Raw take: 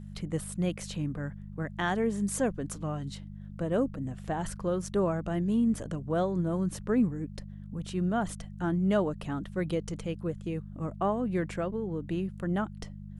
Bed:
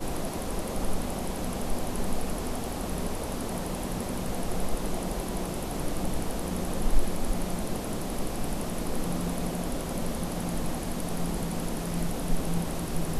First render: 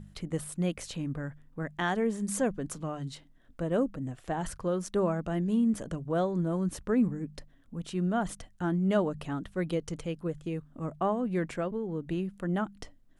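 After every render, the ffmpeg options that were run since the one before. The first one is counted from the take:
-af "bandreject=f=50:t=h:w=4,bandreject=f=100:t=h:w=4,bandreject=f=150:t=h:w=4,bandreject=f=200:t=h:w=4"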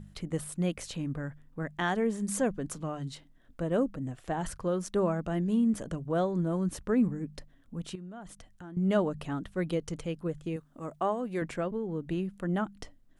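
-filter_complex "[0:a]asettb=1/sr,asplit=3[s0][s1][s2];[s0]atrim=end=7.954[s3];[s1]atrim=start=7.95:end=8.77,asetpts=PTS-STARTPTS,afade=t=in:d=0.004:c=qsin,afade=t=out:st=0.816:d=0.004:c=qsin,acompressor=threshold=0.00355:ratio=2.5:attack=3.2:release=140:knee=1:detection=peak[s4];[s2]atrim=start=8.766[s5];[s3][s4]acrossfade=d=0.004:c1=hsin:c2=qsin[s6];[s6][s5]acrossfade=d=0.004:c1=qsin:c2=hsin,asettb=1/sr,asplit=3[s7][s8][s9];[s7]atrim=end=10.564[s10];[s8]atrim=start=10.56:end=11.42,asetpts=PTS-STARTPTS,afade=t=in:d=0.004:c=qsin,afade=t=out:st=0.856:d=0.004:c=qsin,bass=f=250:g=-9,treble=f=4000:g=5[s11];[s9]atrim=start=11.416[s12];[s10][s11]acrossfade=d=0.004:c1=hsin:c2=qsin[s13];[s13][s12]acrossfade=d=0.004:c1=qsin:c2=hsin"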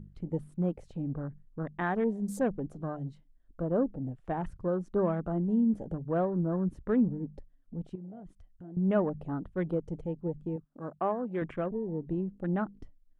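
-af "afwtdn=0.00891,highshelf=f=3000:g=-11.5"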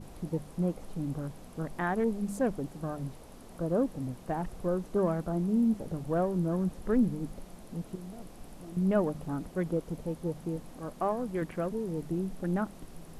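-filter_complex "[1:a]volume=0.126[s0];[0:a][s0]amix=inputs=2:normalize=0"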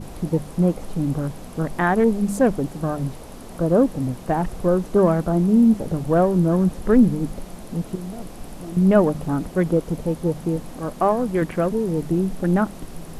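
-af "volume=3.76"

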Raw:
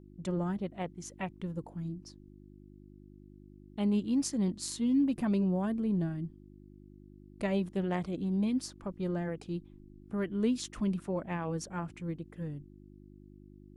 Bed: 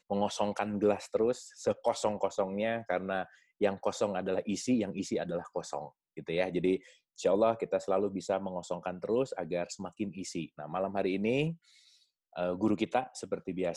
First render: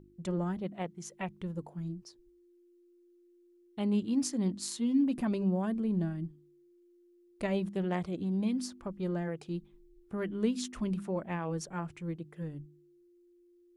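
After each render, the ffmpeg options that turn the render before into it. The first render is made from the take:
-af "bandreject=f=50:t=h:w=4,bandreject=f=100:t=h:w=4,bandreject=f=150:t=h:w=4,bandreject=f=200:t=h:w=4,bandreject=f=250:t=h:w=4,bandreject=f=300:t=h:w=4"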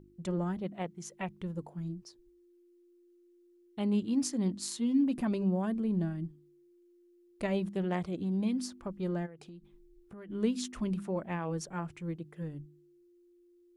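-filter_complex "[0:a]asplit=3[s0][s1][s2];[s0]afade=t=out:st=9.25:d=0.02[s3];[s1]acompressor=threshold=0.00562:ratio=10:attack=3.2:release=140:knee=1:detection=peak,afade=t=in:st=9.25:d=0.02,afade=t=out:st=10.29:d=0.02[s4];[s2]afade=t=in:st=10.29:d=0.02[s5];[s3][s4][s5]amix=inputs=3:normalize=0"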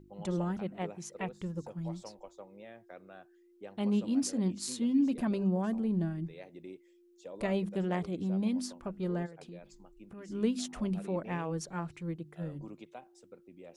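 -filter_complex "[1:a]volume=0.119[s0];[0:a][s0]amix=inputs=2:normalize=0"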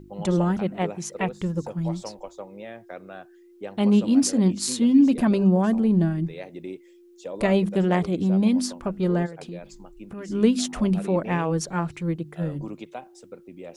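-af "volume=3.55"

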